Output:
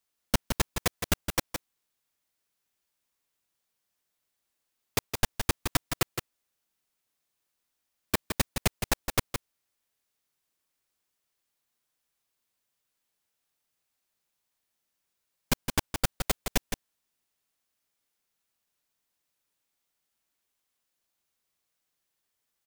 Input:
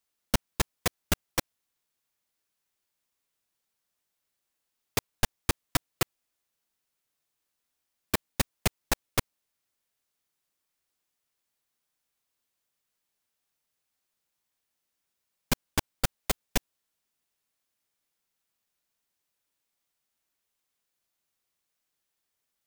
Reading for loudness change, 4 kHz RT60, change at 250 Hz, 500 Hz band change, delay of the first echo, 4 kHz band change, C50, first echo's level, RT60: +0.5 dB, none, +1.0 dB, +1.0 dB, 0.165 s, +1.0 dB, none, -7.0 dB, none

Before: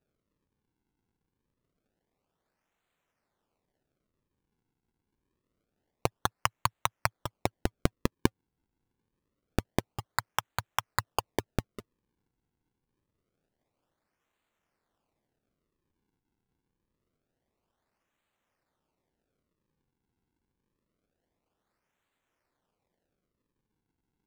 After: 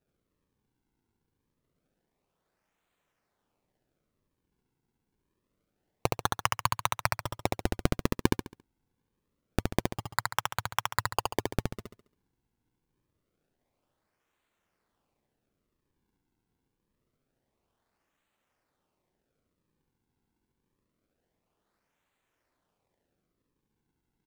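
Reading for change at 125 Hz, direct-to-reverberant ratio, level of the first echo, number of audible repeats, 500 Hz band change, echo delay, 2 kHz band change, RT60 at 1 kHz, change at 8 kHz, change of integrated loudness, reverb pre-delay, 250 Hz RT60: +2.0 dB, none, -3.0 dB, 4, +2.0 dB, 69 ms, +2.0 dB, none, +2.0 dB, +2.0 dB, none, none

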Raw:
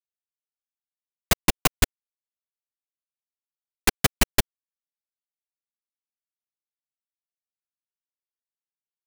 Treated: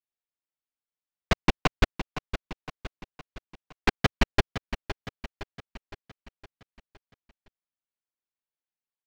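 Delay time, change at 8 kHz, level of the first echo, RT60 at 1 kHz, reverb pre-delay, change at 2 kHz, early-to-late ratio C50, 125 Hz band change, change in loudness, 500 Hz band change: 0.513 s, -17.5 dB, -11.0 dB, none, none, -1.5 dB, none, 0.0 dB, -6.0 dB, 0.0 dB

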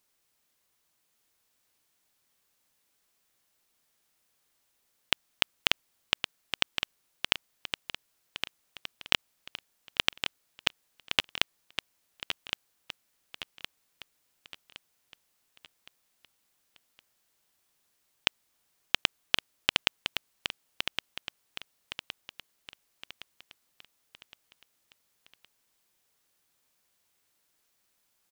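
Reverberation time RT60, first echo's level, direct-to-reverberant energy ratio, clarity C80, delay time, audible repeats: none, -7.5 dB, none, none, 1.115 s, 4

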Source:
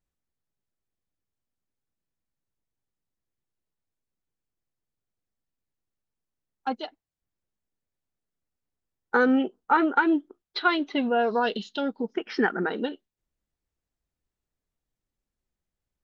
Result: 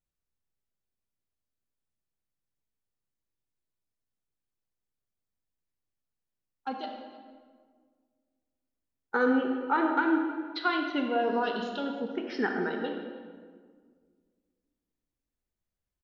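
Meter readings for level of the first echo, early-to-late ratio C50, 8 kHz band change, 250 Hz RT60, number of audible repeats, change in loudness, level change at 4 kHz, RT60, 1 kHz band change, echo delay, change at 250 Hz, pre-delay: -19.0 dB, 3.5 dB, n/a, 2.2 s, 1, -4.0 dB, -4.5 dB, 1.8 s, -4.0 dB, 0.312 s, -3.5 dB, 27 ms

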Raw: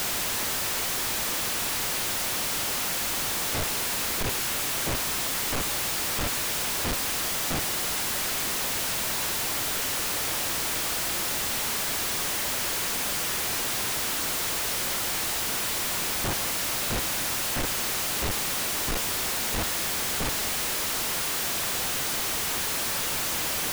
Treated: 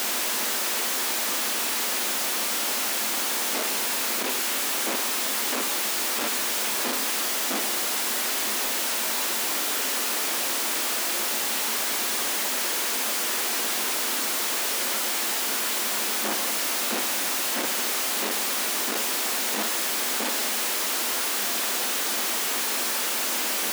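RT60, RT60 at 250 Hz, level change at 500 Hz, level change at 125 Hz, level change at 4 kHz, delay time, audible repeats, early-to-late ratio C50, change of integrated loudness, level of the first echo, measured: 0.90 s, 0.85 s, +2.0 dB, under -15 dB, +2.0 dB, none, none, 11.0 dB, +2.0 dB, none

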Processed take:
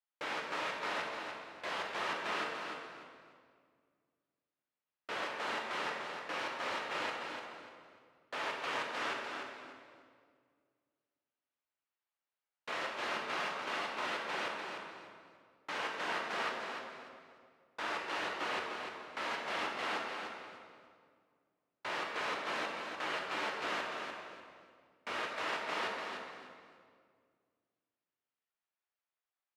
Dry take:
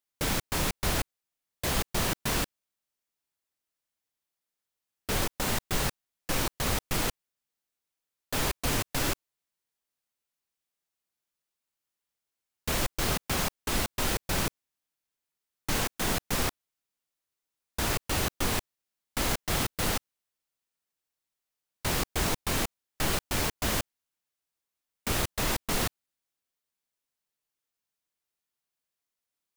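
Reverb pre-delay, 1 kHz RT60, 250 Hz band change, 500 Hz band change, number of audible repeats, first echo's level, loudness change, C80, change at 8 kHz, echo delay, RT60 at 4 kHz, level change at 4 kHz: 9 ms, 1.9 s, -13.5 dB, -5.5 dB, 3, -6.5 dB, -8.0 dB, 1.0 dB, -21.0 dB, 0.296 s, 1.6 s, -8.0 dB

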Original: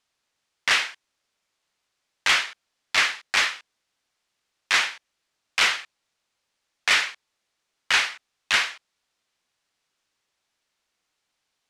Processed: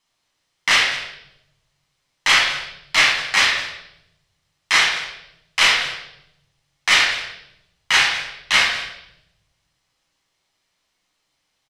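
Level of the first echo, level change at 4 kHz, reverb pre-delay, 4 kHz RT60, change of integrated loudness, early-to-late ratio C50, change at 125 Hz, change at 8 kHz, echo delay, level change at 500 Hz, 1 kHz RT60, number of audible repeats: -16.5 dB, +7.0 dB, 6 ms, 0.80 s, +5.5 dB, 4.0 dB, n/a, +5.5 dB, 0.206 s, +6.5 dB, 0.75 s, 1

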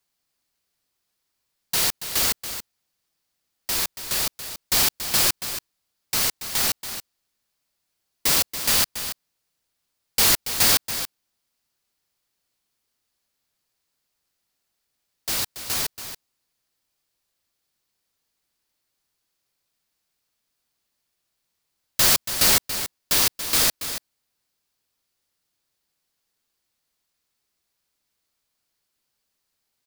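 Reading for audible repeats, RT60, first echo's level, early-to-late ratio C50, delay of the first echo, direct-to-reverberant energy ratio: 1, none, -10.5 dB, none, 0.281 s, none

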